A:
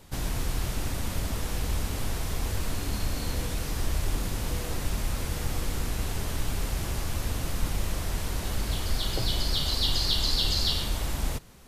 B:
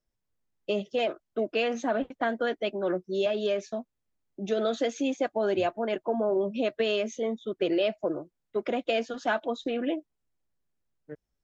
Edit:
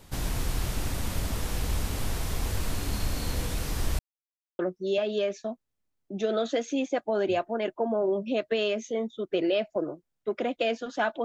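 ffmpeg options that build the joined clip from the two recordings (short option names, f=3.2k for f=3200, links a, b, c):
-filter_complex "[0:a]apad=whole_dur=11.24,atrim=end=11.24,asplit=2[a][b];[a]atrim=end=3.99,asetpts=PTS-STARTPTS,afade=t=out:st=3.986:d=0.004:c=hsin[c];[b]atrim=start=3.99:end=4.59,asetpts=PTS-STARTPTS,volume=0[d];[1:a]atrim=start=2.87:end=9.52,asetpts=PTS-STARTPTS,afade=t=in:d=0.004:c=hsin[e];[c][d][e]concat=n=3:v=0:a=1"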